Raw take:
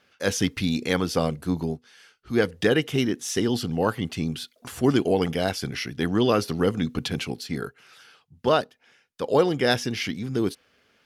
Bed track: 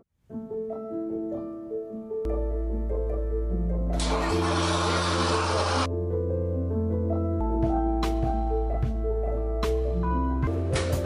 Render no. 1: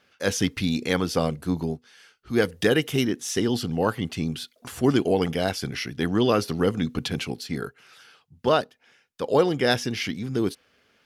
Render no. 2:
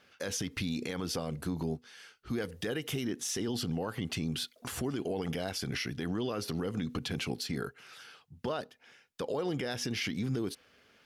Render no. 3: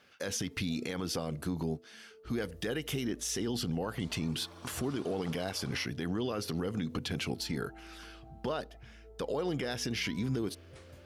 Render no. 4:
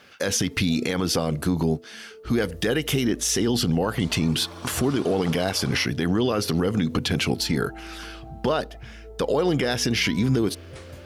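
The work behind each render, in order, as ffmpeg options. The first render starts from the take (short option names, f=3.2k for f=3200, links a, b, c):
-filter_complex "[0:a]asettb=1/sr,asplit=3[a][b][c];[a]atrim=end=2.364[d];[b]atrim=start=2.36:end=3.05,asetpts=PTS-STARTPTS,afade=t=in:d=0.004:c=qsin,afade=t=out:st=0.686:d=0.004:c=qsin,highshelf=f=8.5k:g=10[e];[c]atrim=start=3.046[f];[d][e]acrossfade=d=0.004:c1=hsin:c2=qsin[g];[g][f]acrossfade=d=0.004:c1=qsin:c2=hsin"
-af "acompressor=threshold=-23dB:ratio=6,alimiter=level_in=1dB:limit=-24dB:level=0:latency=1:release=79,volume=-1dB"
-filter_complex "[1:a]volume=-27dB[a];[0:a][a]amix=inputs=2:normalize=0"
-af "volume=11.5dB"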